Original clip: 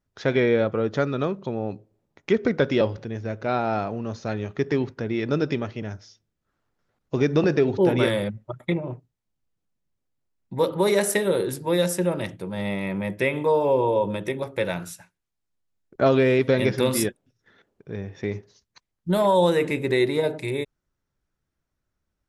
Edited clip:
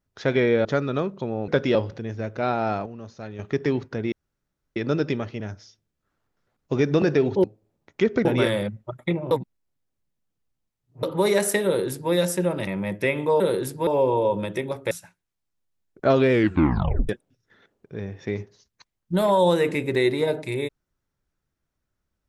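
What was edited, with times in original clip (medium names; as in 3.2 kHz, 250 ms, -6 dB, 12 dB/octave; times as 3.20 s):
0.65–0.90 s: delete
1.73–2.54 s: move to 7.86 s
3.92–4.45 s: gain -8.5 dB
5.18 s: insert room tone 0.64 s
8.92–10.64 s: reverse
11.26–11.73 s: copy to 13.58 s
12.28–12.85 s: delete
14.62–14.87 s: delete
16.27 s: tape stop 0.78 s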